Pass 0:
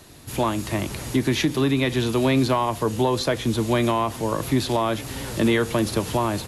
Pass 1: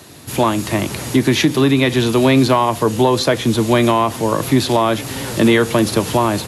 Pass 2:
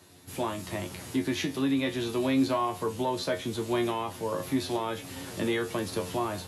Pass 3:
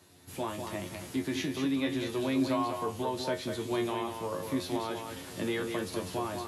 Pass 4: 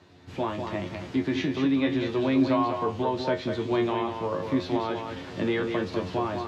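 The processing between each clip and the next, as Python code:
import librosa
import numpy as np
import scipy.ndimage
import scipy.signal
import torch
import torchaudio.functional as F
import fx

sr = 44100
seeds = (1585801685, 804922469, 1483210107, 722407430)

y1 = scipy.signal.sosfilt(scipy.signal.butter(2, 97.0, 'highpass', fs=sr, output='sos'), x)
y1 = y1 * 10.0 ** (7.5 / 20.0)
y2 = fx.comb_fb(y1, sr, f0_hz=90.0, decay_s=0.2, harmonics='all', damping=0.0, mix_pct=90)
y2 = y2 * 10.0 ** (-8.5 / 20.0)
y3 = y2 + 10.0 ** (-6.0 / 20.0) * np.pad(y2, (int(197 * sr / 1000.0), 0))[:len(y2)]
y3 = y3 * 10.0 ** (-4.0 / 20.0)
y4 = fx.air_absorb(y3, sr, metres=190.0)
y4 = y4 * 10.0 ** (6.5 / 20.0)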